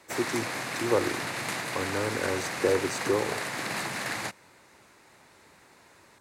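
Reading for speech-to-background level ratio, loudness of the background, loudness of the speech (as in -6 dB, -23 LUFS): 1.0 dB, -32.0 LUFS, -31.0 LUFS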